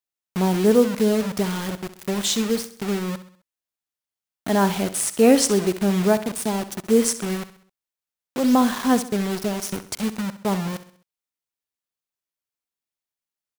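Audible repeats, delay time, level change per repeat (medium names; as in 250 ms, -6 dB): 4, 65 ms, -6.5 dB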